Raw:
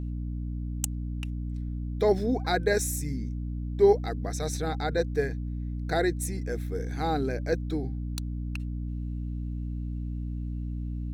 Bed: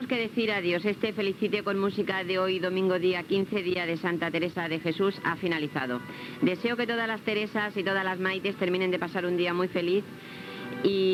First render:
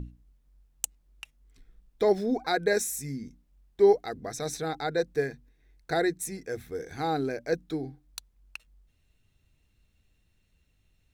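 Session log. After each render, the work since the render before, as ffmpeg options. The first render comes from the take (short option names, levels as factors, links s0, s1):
-af "bandreject=f=60:t=h:w=6,bandreject=f=120:t=h:w=6,bandreject=f=180:t=h:w=6,bandreject=f=240:t=h:w=6,bandreject=f=300:t=h:w=6"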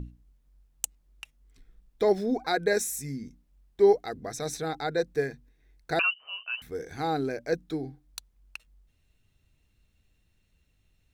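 -filter_complex "[0:a]asettb=1/sr,asplit=3[s0][s1][s2];[s0]atrim=end=5.994[s3];[s1]atrim=start=5.99:end=6.62,asetpts=PTS-STARTPTS,afade=t=in:d=0.004:c=qsin,afade=t=out:st=0.626:d=0.004:c=qsin,lowpass=f=2600:t=q:w=0.5098,lowpass=f=2600:t=q:w=0.6013,lowpass=f=2600:t=q:w=0.9,lowpass=f=2600:t=q:w=2.563,afreqshift=-3100[s4];[s2]atrim=start=6.616[s5];[s3][s4]acrossfade=d=0.004:c1=hsin:c2=qsin[s6];[s6][s5]acrossfade=d=0.004:c1=qsin:c2=hsin"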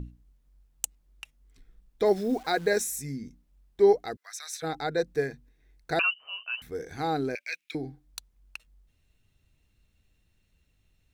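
-filter_complex "[0:a]asettb=1/sr,asplit=3[s0][s1][s2];[s0]atrim=end=2.054[s3];[s1]atrim=start=2.05:end=2.83,asetpts=PTS-STARTPTS,afade=t=in:d=0.004:c=qsin,afade=t=out:st=0.776:d=0.004:c=qsin,acrusher=bits=9:dc=4:mix=0:aa=0.000001[s4];[s2]atrim=start=2.826[s5];[s3][s4]acrossfade=d=0.004:c1=hsin:c2=qsin[s6];[s6][s5]acrossfade=d=0.004:c1=qsin:c2=hsin,asplit=3[s7][s8][s9];[s7]afade=t=out:st=4.15:d=0.02[s10];[s8]highpass=f=1300:w=0.5412,highpass=f=1300:w=1.3066,afade=t=in:st=4.15:d=0.02,afade=t=out:st=4.62:d=0.02[s11];[s9]afade=t=in:st=4.62:d=0.02[s12];[s10][s11][s12]amix=inputs=3:normalize=0,asettb=1/sr,asplit=3[s13][s14][s15];[s13]atrim=end=7.354[s16];[s14]atrim=start=7.35:end=7.75,asetpts=PTS-STARTPTS,afade=t=in:d=0.004:c=qsin,afade=t=out:st=0.396:d=0.004:c=qsin,highpass=f=2400:t=q:w=7.9[s17];[s15]atrim=start=7.746[s18];[s16][s17]acrossfade=d=0.004:c1=hsin:c2=qsin[s19];[s19][s18]acrossfade=d=0.004:c1=qsin:c2=hsin"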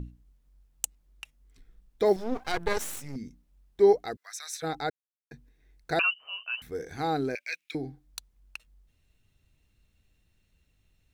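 -filter_complex "[0:a]asettb=1/sr,asplit=3[s0][s1][s2];[s0]atrim=end=2.164[s3];[s1]atrim=start=2.16:end=3.16,asetpts=PTS-STARTPTS,afade=t=in:d=0.004:c=qsin,afade=t=out:st=0.996:d=0.004:c=qsin,aeval=exprs='max(val(0),0)':c=same[s4];[s2]atrim=start=3.156[s5];[s3][s4]acrossfade=d=0.004:c1=hsin:c2=qsin[s6];[s6][s5]acrossfade=d=0.004:c1=qsin:c2=hsin,asplit=3[s7][s8][s9];[s7]atrim=end=4.9,asetpts=PTS-STARTPTS,afade=t=out:st=4.896:d=0.004:c=hsin[s10];[s8]atrim=start=4.9:end=5.31,asetpts=PTS-STARTPTS,volume=0[s11];[s9]atrim=start=5.31,asetpts=PTS-STARTPTS,afade=t=in:d=0.004:c=hsin[s12];[s10][s11][s12]concat=n=3:v=0:a=1"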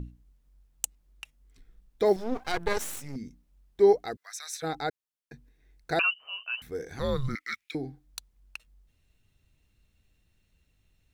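-filter_complex "[0:a]asettb=1/sr,asplit=3[s0][s1][s2];[s0]atrim=end=6.994[s3];[s1]atrim=start=6.99:end=7.64,asetpts=PTS-STARTPTS,afade=t=in:d=0.004:c=qsin,afade=t=out:st=0.646:d=0.004:c=qsin,afreqshift=-270[s4];[s2]atrim=start=7.636[s5];[s3][s4]acrossfade=d=0.004:c1=hsin:c2=qsin[s6];[s6][s5]acrossfade=d=0.004:c1=qsin:c2=hsin"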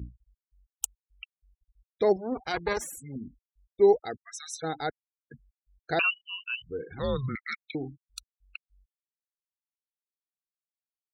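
-af "highpass=f=41:w=0.5412,highpass=f=41:w=1.3066,afftfilt=real='re*gte(hypot(re,im),0.0126)':imag='im*gte(hypot(re,im),0.0126)':win_size=1024:overlap=0.75"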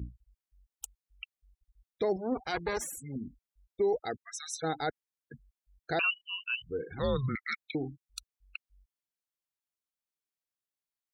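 -af "alimiter=limit=0.0891:level=0:latency=1:release=29"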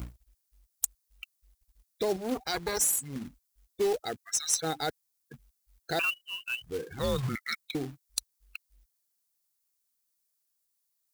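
-filter_complex "[0:a]acrossover=split=2400[s0][s1];[s1]aexciter=amount=2.9:drive=7.9:freq=4000[s2];[s0][s2]amix=inputs=2:normalize=0,acrusher=bits=3:mode=log:mix=0:aa=0.000001"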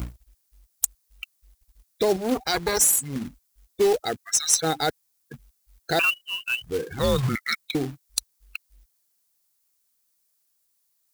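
-af "volume=2.37,alimiter=limit=0.891:level=0:latency=1"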